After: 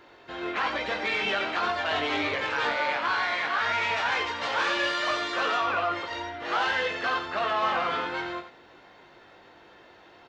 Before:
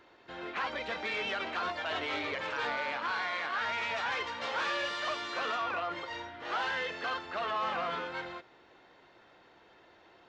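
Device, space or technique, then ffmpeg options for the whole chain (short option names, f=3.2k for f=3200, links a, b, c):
slapback doubling: -filter_complex "[0:a]asplit=3[a][b][c];[b]adelay=20,volume=-5.5dB[d];[c]adelay=91,volume=-8.5dB[e];[a][d][e]amix=inputs=3:normalize=0,volume=5.5dB"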